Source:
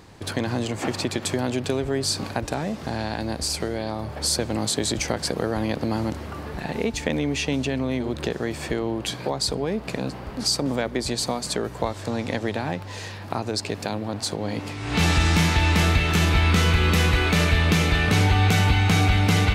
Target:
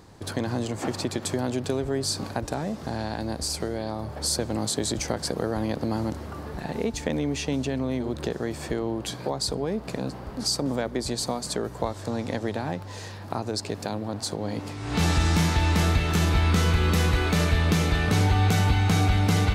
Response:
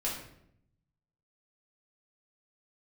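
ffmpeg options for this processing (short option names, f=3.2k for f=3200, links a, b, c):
-af "equalizer=f=2.5k:t=o:w=1.1:g=-6,volume=-2dB"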